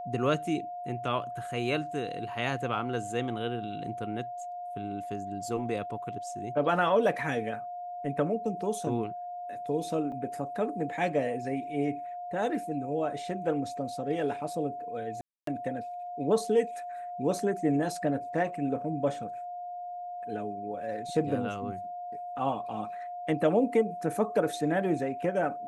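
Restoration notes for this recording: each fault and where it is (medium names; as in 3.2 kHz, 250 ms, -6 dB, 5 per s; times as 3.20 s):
whine 710 Hz -36 dBFS
10.12 s: dropout 2.4 ms
15.21–15.47 s: dropout 263 ms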